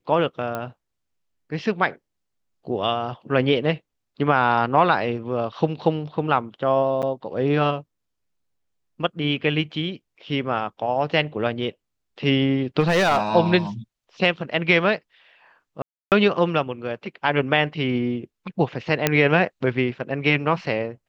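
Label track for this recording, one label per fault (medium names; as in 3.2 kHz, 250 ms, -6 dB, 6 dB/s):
0.550000	0.550000	pop -15 dBFS
7.020000	7.030000	dropout 8 ms
12.800000	13.230000	clipped -14.5 dBFS
15.820000	16.120000	dropout 298 ms
19.070000	19.070000	pop -2 dBFS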